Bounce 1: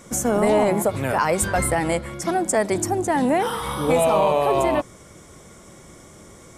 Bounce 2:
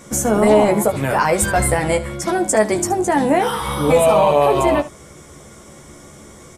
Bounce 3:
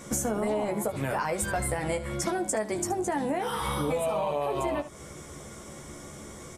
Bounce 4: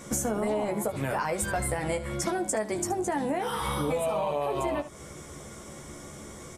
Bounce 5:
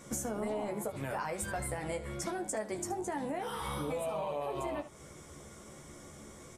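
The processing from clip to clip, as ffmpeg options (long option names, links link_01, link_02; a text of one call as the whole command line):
ffmpeg -i in.wav -af "aecho=1:1:14|75:0.562|0.168,volume=3dB" out.wav
ffmpeg -i in.wav -af "acompressor=threshold=-24dB:ratio=6,volume=-2.5dB" out.wav
ffmpeg -i in.wav -af anull out.wav
ffmpeg -i in.wav -af "flanger=delay=5.9:depth=8.6:regen=83:speed=1.2:shape=triangular,volume=-3dB" out.wav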